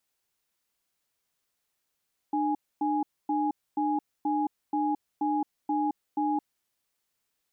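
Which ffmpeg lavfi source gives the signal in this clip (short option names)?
-f lavfi -i "aevalsrc='0.0447*(sin(2*PI*300*t)+sin(2*PI*830*t))*clip(min(mod(t,0.48),0.22-mod(t,0.48))/0.005,0,1)':d=4.3:s=44100"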